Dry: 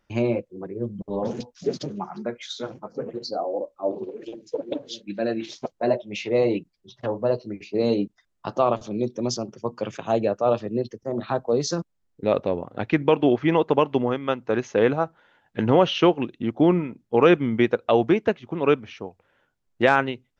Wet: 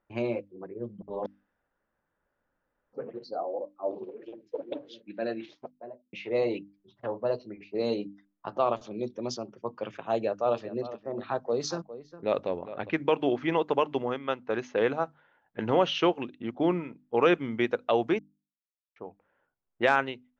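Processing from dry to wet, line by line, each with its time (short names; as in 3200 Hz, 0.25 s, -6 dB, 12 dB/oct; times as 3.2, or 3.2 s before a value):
1.26–2.93 room tone
5.23–6.13 studio fade out
10.16–12.9 echo 0.407 s -14 dB
18.19–18.96 mute
whole clip: notches 50/100/150/200/250/300 Hz; low-pass opened by the level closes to 1400 Hz, open at -16 dBFS; low shelf 290 Hz -8 dB; gain -4 dB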